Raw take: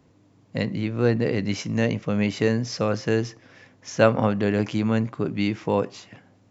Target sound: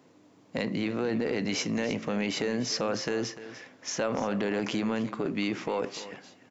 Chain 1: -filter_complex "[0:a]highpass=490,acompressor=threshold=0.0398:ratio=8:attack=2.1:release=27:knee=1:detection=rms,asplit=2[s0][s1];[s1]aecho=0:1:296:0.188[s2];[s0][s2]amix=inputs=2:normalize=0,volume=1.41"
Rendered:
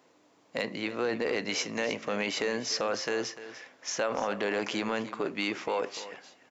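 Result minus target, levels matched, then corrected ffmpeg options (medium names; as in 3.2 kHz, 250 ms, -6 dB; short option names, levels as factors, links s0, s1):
250 Hz band -5.0 dB
-filter_complex "[0:a]highpass=240,acompressor=threshold=0.0398:ratio=8:attack=2.1:release=27:knee=1:detection=rms,asplit=2[s0][s1];[s1]aecho=0:1:296:0.188[s2];[s0][s2]amix=inputs=2:normalize=0,volume=1.41"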